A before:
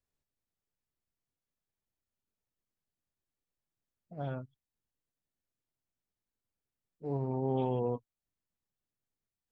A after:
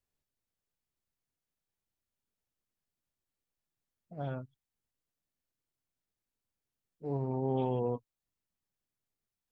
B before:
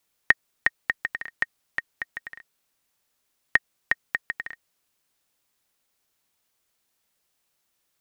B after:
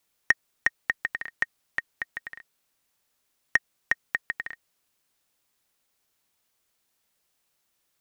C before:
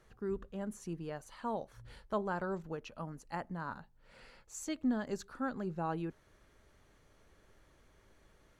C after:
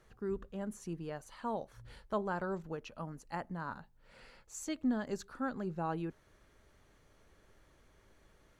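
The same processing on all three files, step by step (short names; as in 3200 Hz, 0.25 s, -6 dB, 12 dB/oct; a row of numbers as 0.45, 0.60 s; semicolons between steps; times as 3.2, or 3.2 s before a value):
soft clip -7 dBFS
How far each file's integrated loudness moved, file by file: 0.0, -2.0, 0.0 LU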